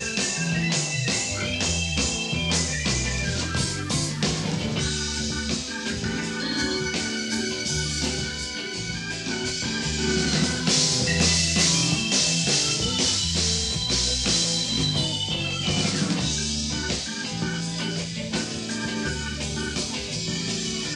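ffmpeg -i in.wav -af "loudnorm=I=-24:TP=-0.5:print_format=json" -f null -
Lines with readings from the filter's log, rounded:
"input_i" : "-24.1",
"input_tp" : "-8.7",
"input_lra" : "7.2",
"input_thresh" : "-34.1",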